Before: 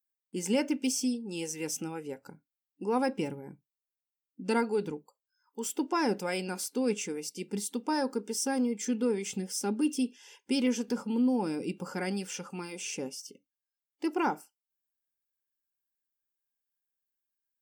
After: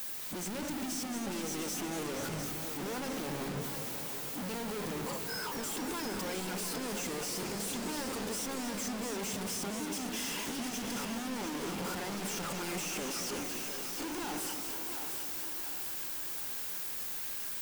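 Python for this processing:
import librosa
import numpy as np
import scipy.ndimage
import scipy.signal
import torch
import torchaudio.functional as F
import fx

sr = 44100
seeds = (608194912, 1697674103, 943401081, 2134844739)

y = np.sign(x) * np.sqrt(np.mean(np.square(x)))
y = fx.echo_split(y, sr, split_hz=370.0, low_ms=97, high_ms=708, feedback_pct=52, wet_db=-8.0)
y = fx.echo_warbled(y, sr, ms=229, feedback_pct=73, rate_hz=2.8, cents=189, wet_db=-9)
y = y * 10.0 ** (-5.0 / 20.0)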